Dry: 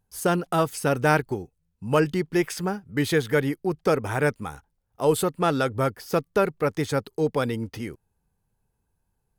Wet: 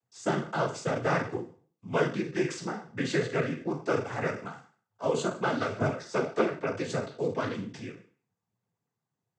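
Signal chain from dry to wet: spectral sustain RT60 0.44 s; 5.74–6.55 s: doubling 15 ms -5 dB; noise-vocoded speech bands 16; trim -7 dB

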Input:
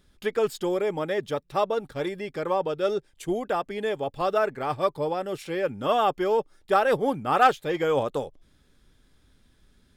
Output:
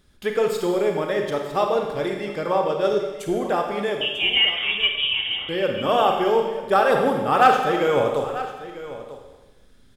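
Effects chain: 4.01–5.49 s: frequency inversion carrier 3.5 kHz; delay 944 ms -15 dB; Schroeder reverb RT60 1.2 s, combs from 31 ms, DRR 2.5 dB; trim +2.5 dB

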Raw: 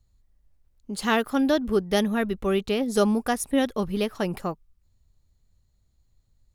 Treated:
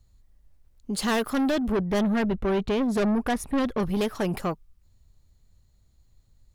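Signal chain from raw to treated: 1.72–3.80 s: tone controls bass +4 dB, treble -12 dB; saturation -26 dBFS, distortion -7 dB; trim +5 dB

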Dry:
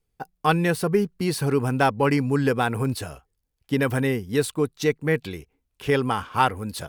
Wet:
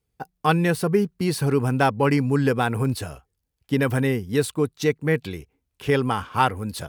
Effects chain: high-pass 54 Hz; bass shelf 170 Hz +4 dB

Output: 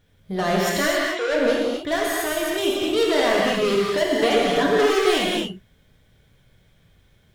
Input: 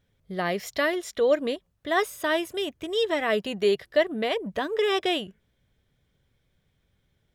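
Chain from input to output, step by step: saturation -28.5 dBFS, distortion -7 dB; 0.88–1.28 s: band-pass 610–3200 Hz; 1.95–2.58 s: compression, threshold -35 dBFS, peak gain reduction 5 dB; 4.12–4.93 s: comb 7 ms, depth 60%; gated-style reverb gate 300 ms flat, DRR -4 dB; trim +7.5 dB

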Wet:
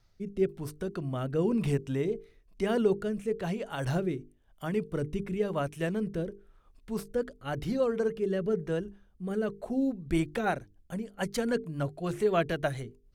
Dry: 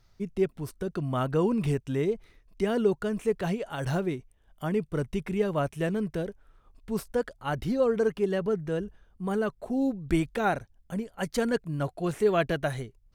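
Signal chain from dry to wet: hum notches 50/100/150/200/250/300/350/400/450 Hz; rotary cabinet horn 1 Hz, later 7 Hz, at 9.47 s; Opus 96 kbps 48 kHz

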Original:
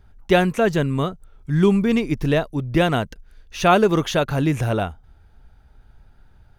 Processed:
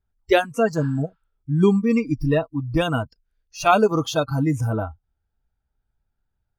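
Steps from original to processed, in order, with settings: spectral noise reduction 25 dB; spectral replace 0.83–1.30 s, 800–5400 Hz both

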